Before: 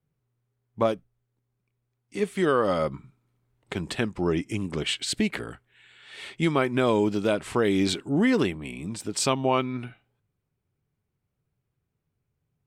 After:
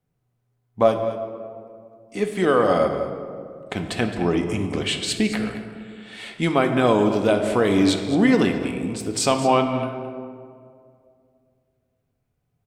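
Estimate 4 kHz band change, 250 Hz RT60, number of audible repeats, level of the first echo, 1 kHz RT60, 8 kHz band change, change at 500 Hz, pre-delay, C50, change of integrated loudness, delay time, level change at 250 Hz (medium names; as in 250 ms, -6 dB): +3.5 dB, 2.6 s, 1, -14.0 dB, 2.0 s, +3.0 dB, +5.5 dB, 3 ms, 6.5 dB, +4.5 dB, 216 ms, +5.0 dB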